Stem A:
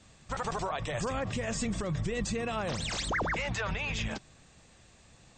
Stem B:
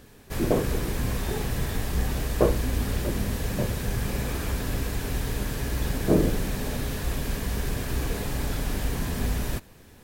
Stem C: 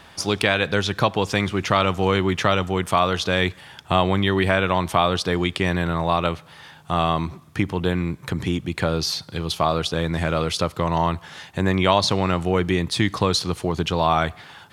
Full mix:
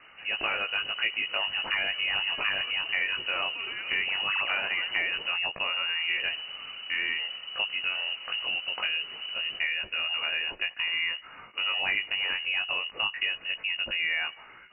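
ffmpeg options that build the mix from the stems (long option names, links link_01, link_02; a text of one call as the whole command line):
ffmpeg -i stem1.wav -i stem2.wav -i stem3.wav -filter_complex "[0:a]dynaudnorm=framelen=180:gausssize=13:maxgain=8.5dB,adelay=1200,volume=-13dB[link_01];[1:a]volume=-12.5dB,asplit=3[link_02][link_03][link_04];[link_02]atrim=end=5.32,asetpts=PTS-STARTPTS,afade=type=out:start_time=5.316:duration=0.004:curve=hsin[link_05];[link_03]atrim=start=5.32:end=6,asetpts=PTS-STARTPTS,volume=0[link_06];[link_04]atrim=start=6,asetpts=PTS-STARTPTS,afade=type=in:duration=0.004:curve=hsin[link_07];[link_05][link_06][link_07]concat=n=3:v=0:a=1[link_08];[2:a]flanger=delay=17.5:depth=2.3:speed=0.2,volume=-2.5dB[link_09];[link_01][link_08][link_09]amix=inputs=3:normalize=0,lowpass=frequency=2600:width_type=q:width=0.5098,lowpass=frequency=2600:width_type=q:width=0.6013,lowpass=frequency=2600:width_type=q:width=0.9,lowpass=frequency=2600:width_type=q:width=2.563,afreqshift=-3000,acompressor=threshold=-28dB:ratio=2" out.wav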